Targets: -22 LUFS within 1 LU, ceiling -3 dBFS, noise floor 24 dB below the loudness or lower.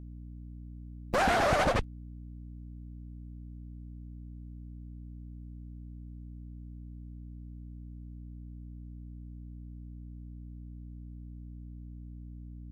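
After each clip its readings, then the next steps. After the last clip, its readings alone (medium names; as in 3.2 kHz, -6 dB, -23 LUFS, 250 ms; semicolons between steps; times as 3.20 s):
dropouts 1; longest dropout 3.0 ms; hum 60 Hz; highest harmonic 300 Hz; hum level -42 dBFS; loudness -38.0 LUFS; peak level -13.5 dBFS; loudness target -22.0 LUFS
-> interpolate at 1.14 s, 3 ms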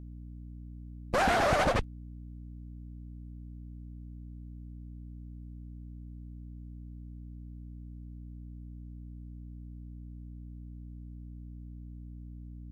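dropouts 0; hum 60 Hz; highest harmonic 300 Hz; hum level -42 dBFS
-> de-hum 60 Hz, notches 5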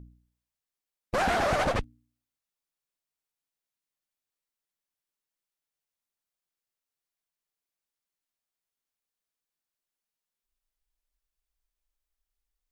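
hum not found; loudness -27.5 LUFS; peak level -14.0 dBFS; loudness target -22.0 LUFS
-> trim +5.5 dB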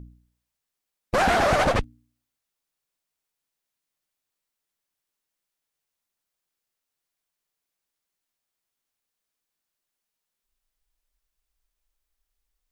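loudness -22.0 LUFS; peak level -8.5 dBFS; noise floor -85 dBFS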